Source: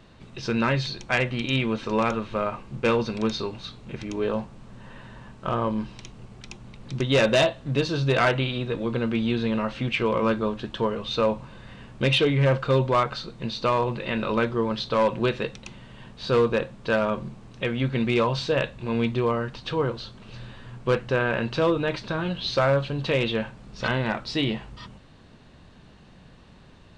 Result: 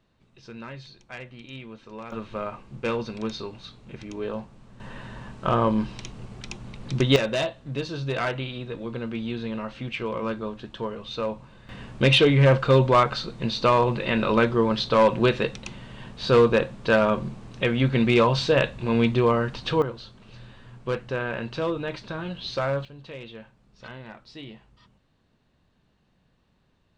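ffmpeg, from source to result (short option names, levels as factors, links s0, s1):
-af "asetnsamples=n=441:p=0,asendcmd='2.12 volume volume -5dB;4.8 volume volume 4dB;7.16 volume volume -6dB;11.69 volume volume 3.5dB;19.82 volume volume -5dB;22.85 volume volume -16dB',volume=0.158"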